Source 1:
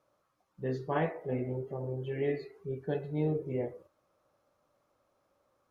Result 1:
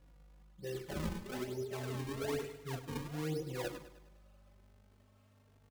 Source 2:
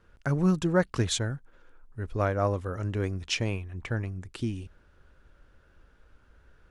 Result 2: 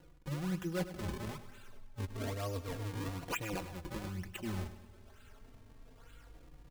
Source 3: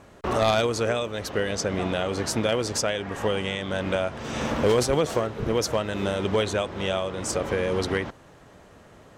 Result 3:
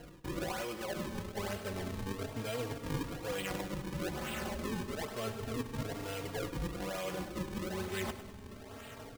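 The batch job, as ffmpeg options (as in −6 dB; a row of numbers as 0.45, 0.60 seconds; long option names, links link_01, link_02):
-filter_complex "[0:a]acrossover=split=2600[link_01][link_02];[link_02]acompressor=threshold=-48dB:ratio=4:attack=1:release=60[link_03];[link_01][link_03]amix=inputs=2:normalize=0,lowpass=frequency=6300:width=0.5412,lowpass=frequency=6300:width=1.3066,aeval=exprs='val(0)+0.000794*(sin(2*PI*50*n/s)+sin(2*PI*2*50*n/s)/2+sin(2*PI*3*50*n/s)/3+sin(2*PI*4*50*n/s)/4+sin(2*PI*5*50*n/s)/5)':channel_layout=same,acrossover=split=2600[link_04][link_05];[link_05]alimiter=level_in=12.5dB:limit=-24dB:level=0:latency=1:release=151,volume=-12.5dB[link_06];[link_04][link_06]amix=inputs=2:normalize=0,volume=17.5dB,asoftclip=hard,volume=-17.5dB,areverse,acompressor=threshold=-36dB:ratio=12,areverse,equalizer=frequency=2900:width_type=o:width=0.89:gain=14,acrusher=samples=37:mix=1:aa=0.000001:lfo=1:lforange=59.2:lforate=1.1,aecho=1:1:102|204|306|408|510:0.224|0.112|0.056|0.028|0.014,asplit=2[link_07][link_08];[link_08]adelay=3.7,afreqshift=0.3[link_09];[link_07][link_09]amix=inputs=2:normalize=1,volume=3dB"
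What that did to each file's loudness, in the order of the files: −6.0, −10.5, −13.0 LU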